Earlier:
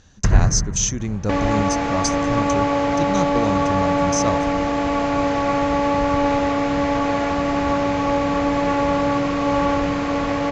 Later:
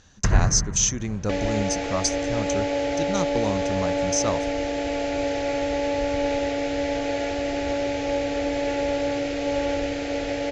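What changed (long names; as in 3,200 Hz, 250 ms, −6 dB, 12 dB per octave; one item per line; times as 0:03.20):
second sound: add phaser with its sweep stopped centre 450 Hz, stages 4
master: add low-shelf EQ 460 Hz −4.5 dB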